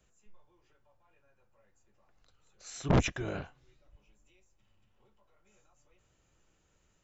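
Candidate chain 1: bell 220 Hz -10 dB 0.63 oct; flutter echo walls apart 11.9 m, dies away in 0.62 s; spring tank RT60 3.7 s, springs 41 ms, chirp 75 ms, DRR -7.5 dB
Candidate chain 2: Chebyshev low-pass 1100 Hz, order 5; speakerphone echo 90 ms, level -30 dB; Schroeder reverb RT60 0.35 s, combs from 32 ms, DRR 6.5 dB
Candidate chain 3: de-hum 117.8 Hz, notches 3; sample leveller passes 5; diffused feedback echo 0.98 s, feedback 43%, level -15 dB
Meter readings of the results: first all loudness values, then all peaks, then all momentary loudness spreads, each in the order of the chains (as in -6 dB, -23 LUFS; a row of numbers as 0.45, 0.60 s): -27.5, -31.5, -26.0 LUFS; -10.5, -14.5, -16.5 dBFS; 22, 17, 24 LU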